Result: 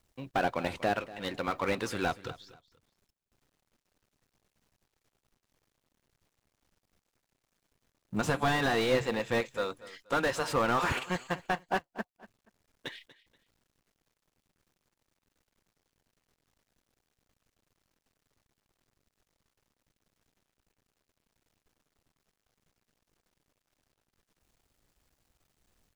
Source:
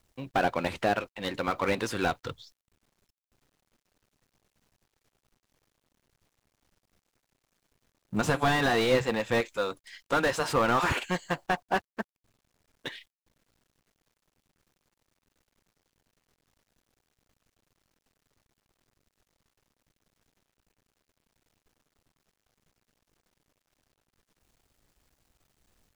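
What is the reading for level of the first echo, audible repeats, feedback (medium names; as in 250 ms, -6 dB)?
-18.0 dB, 2, 28%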